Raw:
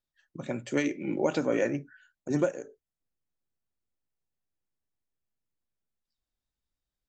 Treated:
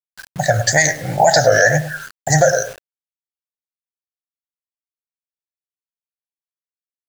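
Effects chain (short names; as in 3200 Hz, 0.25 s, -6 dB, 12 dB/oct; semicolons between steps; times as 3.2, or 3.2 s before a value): EQ curve 130 Hz 0 dB, 240 Hz -28 dB, 380 Hz -28 dB, 720 Hz +9 dB, 1100 Hz -30 dB, 1700 Hz +9 dB, 2500 Hz -27 dB, 4400 Hz +9 dB, 6300 Hz +8 dB, 9000 Hz -4 dB; wow and flutter 140 cents; darkening echo 0.104 s, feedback 20%, low-pass 1700 Hz, level -11.5 dB; requantised 10-bit, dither none; maximiser +25.5 dB; gain -1 dB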